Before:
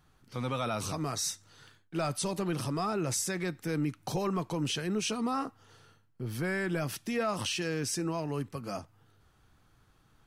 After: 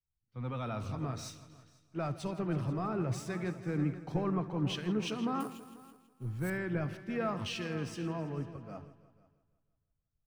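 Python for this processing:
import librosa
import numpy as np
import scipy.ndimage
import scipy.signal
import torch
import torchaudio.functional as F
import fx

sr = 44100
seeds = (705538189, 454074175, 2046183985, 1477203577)

y = scipy.ndimage.median_filter(x, 3, mode='constant')
y = fx.bass_treble(y, sr, bass_db=5, treble_db=-15)
y = fx.echo_heads(y, sr, ms=164, heads='all three', feedback_pct=46, wet_db=-14.5)
y = fx.sample_hold(y, sr, seeds[0], rate_hz=10000.0, jitter_pct=0, at=(5.4, 6.5))
y = y + 10.0 ** (-18.0 / 20.0) * np.pad(y, (int(75 * sr / 1000.0), 0))[:len(y)]
y = fx.band_widen(y, sr, depth_pct=100)
y = y * 10.0 ** (-5.0 / 20.0)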